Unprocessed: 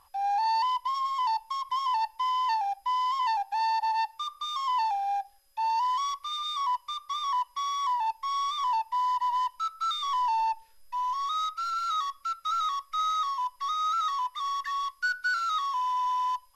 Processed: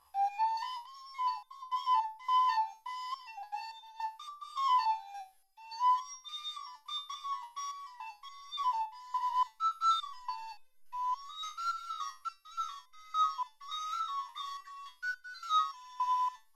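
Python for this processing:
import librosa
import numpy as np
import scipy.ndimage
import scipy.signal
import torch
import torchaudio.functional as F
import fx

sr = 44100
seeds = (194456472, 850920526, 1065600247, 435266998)

y = fx.low_shelf(x, sr, hz=360.0, db=-5.0)
y = fx.resonator_held(y, sr, hz=3.5, low_hz=72.0, high_hz=510.0)
y = F.gain(torch.from_numpy(y), 4.5).numpy()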